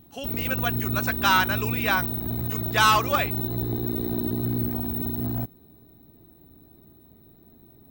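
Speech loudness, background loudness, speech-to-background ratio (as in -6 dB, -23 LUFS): -24.0 LUFS, -27.5 LUFS, 3.5 dB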